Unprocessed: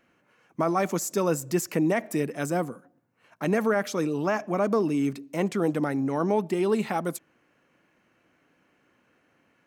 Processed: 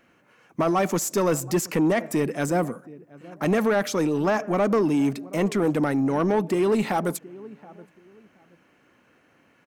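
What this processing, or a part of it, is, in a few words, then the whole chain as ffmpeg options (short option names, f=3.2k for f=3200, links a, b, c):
saturation between pre-emphasis and de-emphasis: -filter_complex "[0:a]asettb=1/sr,asplit=3[a][b][c];[a]atrim=end=1.554[d];[b]atrim=start=1.55:end=2.58,asetpts=PTS-STARTPTS,afade=t=in:d=0.004:c=qsin,afade=t=out:st=1.026:d=0.004:c=qsin,highshelf=f=10k:g=-4[e];[c]atrim=start=2.576[f];[d][e]acrossfade=d=0.004:c1=hsin:c2=qsin[g];[g][f]acrossfade=d=0.004:c1=qsin:c2=hsin,highshelf=f=3.8k:g=7,asplit=2[h][i];[i]adelay=725,lowpass=f=800:p=1,volume=-21dB,asplit=2[j][k];[k]adelay=725,lowpass=f=800:p=1,volume=0.28[l];[h][j][l]amix=inputs=3:normalize=0,asoftclip=type=tanh:threshold=-20.5dB,highshelf=f=3.8k:g=-7,volume=5.5dB"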